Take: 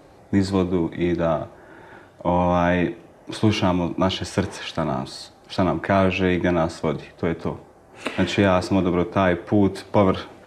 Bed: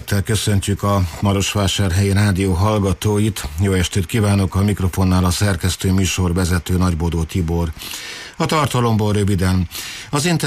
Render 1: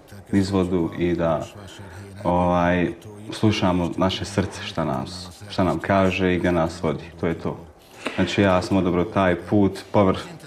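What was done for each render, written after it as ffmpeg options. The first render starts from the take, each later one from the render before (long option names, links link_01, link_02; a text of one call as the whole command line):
ffmpeg -i in.wav -i bed.wav -filter_complex "[1:a]volume=-24dB[link_01];[0:a][link_01]amix=inputs=2:normalize=0" out.wav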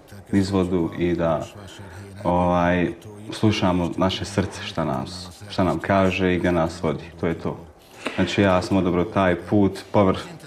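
ffmpeg -i in.wav -af anull out.wav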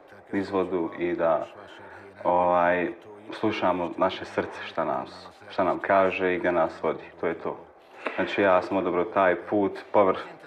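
ffmpeg -i in.wav -filter_complex "[0:a]acrossover=split=330 2900:gain=0.112 1 0.1[link_01][link_02][link_03];[link_01][link_02][link_03]amix=inputs=3:normalize=0,bandreject=frequency=2900:width=16" out.wav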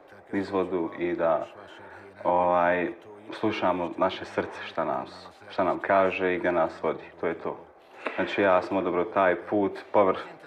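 ffmpeg -i in.wav -af "volume=-1dB" out.wav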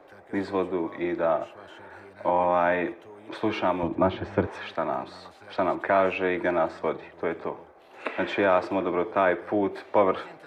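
ffmpeg -i in.wav -filter_complex "[0:a]asettb=1/sr,asplit=3[link_01][link_02][link_03];[link_01]atrim=end=3.834[link_04];[link_02]atrim=start=3.83:end=4.47,asetpts=PTS-STARTPTS,afade=type=in:duration=0.004:curve=qsin,afade=type=out:start_time=0.636:duration=0.004:curve=qsin,aemphasis=mode=reproduction:type=riaa[link_05];[link_03]atrim=start=4.466[link_06];[link_04][link_05]acrossfade=duration=0.004:curve1=hsin:curve2=qsin[link_07];[link_07][link_06]acrossfade=duration=0.004:curve1=qsin:curve2=hsin" out.wav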